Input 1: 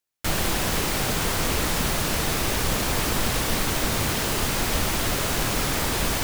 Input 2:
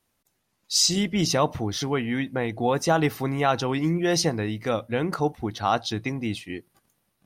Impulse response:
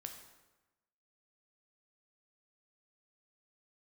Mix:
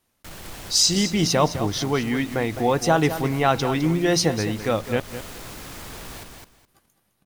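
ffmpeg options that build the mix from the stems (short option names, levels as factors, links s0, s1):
-filter_complex "[0:a]asoftclip=type=tanh:threshold=0.0891,volume=0.237,asplit=2[s0][s1];[s1]volume=0.668[s2];[1:a]volume=1.33,asplit=3[s3][s4][s5];[s3]atrim=end=5,asetpts=PTS-STARTPTS,afade=t=out:st=4.996:d=0.004:c=hsin[s6];[s4]atrim=start=5:end=6.68,asetpts=PTS-STARTPTS,volume=0[s7];[s5]atrim=start=6.68,asetpts=PTS-STARTPTS,afade=t=in:d=0.004:c=hsin[s8];[s6][s7][s8]concat=n=3:v=0:a=1,asplit=3[s9][s10][s11];[s10]volume=0.266[s12];[s11]apad=whole_len=274898[s13];[s0][s13]sidechaincompress=threshold=0.0224:ratio=8:attack=16:release=131[s14];[s2][s12]amix=inputs=2:normalize=0,aecho=0:1:209|418|627:1|0.2|0.04[s15];[s14][s9][s15]amix=inputs=3:normalize=0"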